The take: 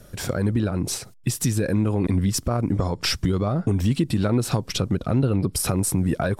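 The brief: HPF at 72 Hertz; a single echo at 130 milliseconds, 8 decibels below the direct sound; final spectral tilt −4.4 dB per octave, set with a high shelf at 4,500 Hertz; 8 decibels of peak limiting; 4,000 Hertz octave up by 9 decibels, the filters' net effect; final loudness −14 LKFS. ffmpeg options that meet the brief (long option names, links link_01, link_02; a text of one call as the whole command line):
ffmpeg -i in.wav -af "highpass=72,equalizer=frequency=4000:width_type=o:gain=7.5,highshelf=frequency=4500:gain=7,alimiter=limit=-12.5dB:level=0:latency=1,aecho=1:1:130:0.398,volume=8.5dB" out.wav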